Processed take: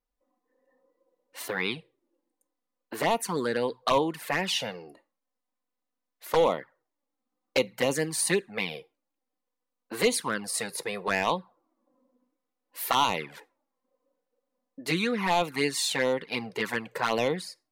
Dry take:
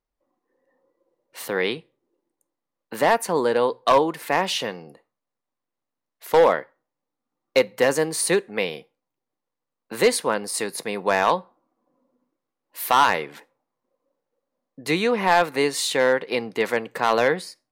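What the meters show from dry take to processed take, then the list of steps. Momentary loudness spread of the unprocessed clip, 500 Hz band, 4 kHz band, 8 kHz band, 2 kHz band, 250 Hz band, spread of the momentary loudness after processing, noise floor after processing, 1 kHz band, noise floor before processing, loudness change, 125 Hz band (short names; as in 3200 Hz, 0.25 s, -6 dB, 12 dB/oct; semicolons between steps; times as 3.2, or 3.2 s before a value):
10 LU, -7.5 dB, -2.5 dB, -3.0 dB, -5.5 dB, -4.0 dB, 11 LU, -85 dBFS, -7.5 dB, -84 dBFS, -6.0 dB, -1.5 dB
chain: envelope flanger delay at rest 4 ms, full sweep at -14.5 dBFS; dynamic EQ 520 Hz, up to -6 dB, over -33 dBFS, Q 0.87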